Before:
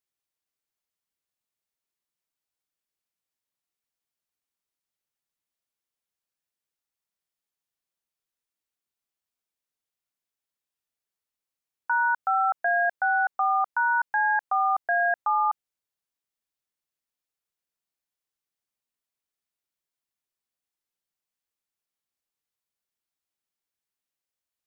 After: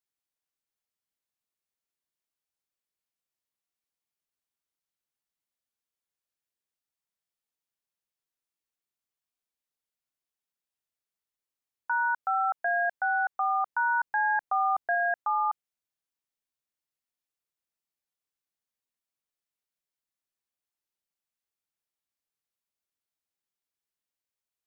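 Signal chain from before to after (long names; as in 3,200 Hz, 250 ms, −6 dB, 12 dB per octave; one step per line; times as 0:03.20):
0:13.65–0:14.95: low-shelf EQ 460 Hz +5.5 dB
level −3.5 dB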